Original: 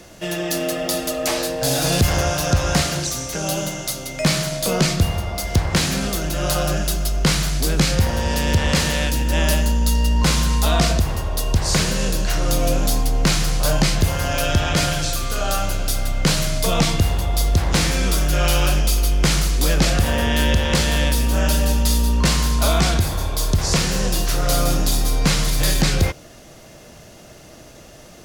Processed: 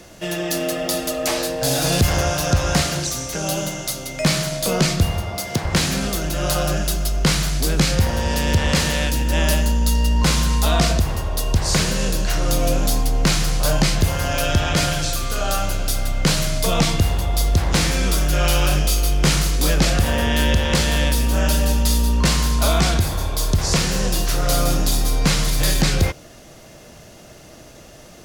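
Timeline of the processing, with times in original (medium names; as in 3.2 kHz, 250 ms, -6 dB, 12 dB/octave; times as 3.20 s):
5.22–5.63 s: high-pass 58 Hz -> 140 Hz 24 dB/octave
18.68–19.71 s: doubling 27 ms -7 dB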